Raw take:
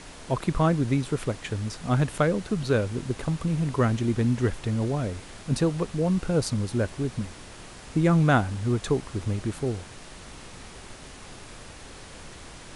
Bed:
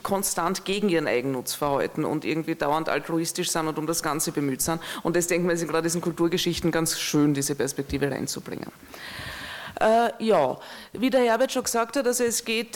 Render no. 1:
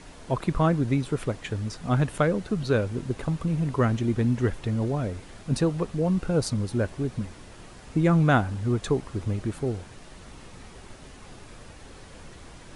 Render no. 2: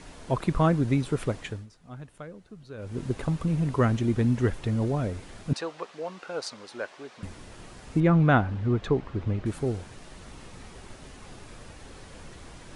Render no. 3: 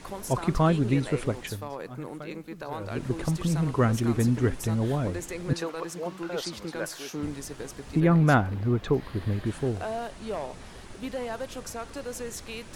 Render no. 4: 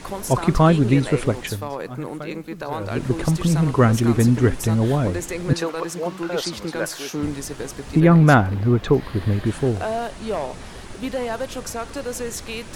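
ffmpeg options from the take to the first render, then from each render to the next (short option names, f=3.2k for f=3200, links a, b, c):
-af "afftdn=nr=6:nf=-45"
-filter_complex "[0:a]asettb=1/sr,asplit=3[a][b][c];[a]atrim=end=5.534[d];[b]atrim=start=5.53:end=7.23,asetpts=PTS-STARTPTS,afade=t=in:d=0.004:c=qsin,afade=t=out:st=1.696:d=0.004:c=qsin,highpass=690,lowpass=5.6k[e];[c]atrim=start=7.226[f];[d][e]acrossfade=d=0.004:c1=hsin:c2=qsin[g];[g][f]acrossfade=d=0.004:c1=qsin:c2=hsin,asettb=1/sr,asplit=3[h][i][j];[h]atrim=end=8.004[k];[i]atrim=start=8:end=9.46,asetpts=PTS-STARTPTS,afade=t=in:d=0.004:c=qsin,afade=t=out:st=1.456:d=0.004:c=qsin,lowpass=3.3k[l];[j]atrim=start=9.456[m];[k][l]acrossfade=d=0.004:c1=hsin:c2=qsin[n];[n][m]acrossfade=d=0.004:c1=qsin:c2=hsin,asplit=3[o][p][q];[o]atrim=end=1.67,asetpts=PTS-STARTPTS,afade=t=out:st=1.4:d=0.27:silence=0.112202[r];[p]atrim=start=1.67:end=2.77,asetpts=PTS-STARTPTS,volume=-19dB[s];[q]atrim=start=2.77,asetpts=PTS-STARTPTS,afade=t=in:d=0.27:silence=0.112202[t];[r][s][t]concat=n=3:v=0:a=1"
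-filter_complex "[1:a]volume=-13dB[a];[0:a][a]amix=inputs=2:normalize=0"
-af "volume=7.5dB,alimiter=limit=-3dB:level=0:latency=1"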